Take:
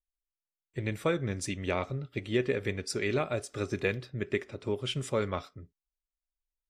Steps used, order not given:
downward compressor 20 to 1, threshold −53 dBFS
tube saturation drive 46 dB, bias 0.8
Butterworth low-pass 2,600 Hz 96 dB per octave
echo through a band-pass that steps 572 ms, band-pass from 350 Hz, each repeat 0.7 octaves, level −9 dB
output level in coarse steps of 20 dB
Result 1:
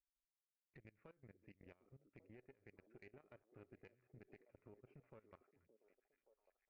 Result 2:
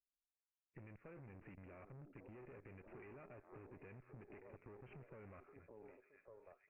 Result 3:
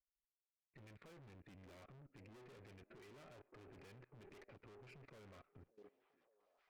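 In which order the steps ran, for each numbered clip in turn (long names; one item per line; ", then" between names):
Butterworth low-pass, then downward compressor, then tube saturation, then output level in coarse steps, then echo through a band-pass that steps
output level in coarse steps, then echo through a band-pass that steps, then tube saturation, then Butterworth low-pass, then downward compressor
Butterworth low-pass, then tube saturation, then echo through a band-pass that steps, then downward compressor, then output level in coarse steps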